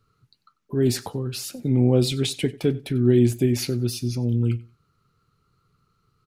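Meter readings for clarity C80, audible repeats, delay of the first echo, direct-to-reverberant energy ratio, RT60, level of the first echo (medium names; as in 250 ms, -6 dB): no reverb, 2, 94 ms, no reverb, no reverb, -21.0 dB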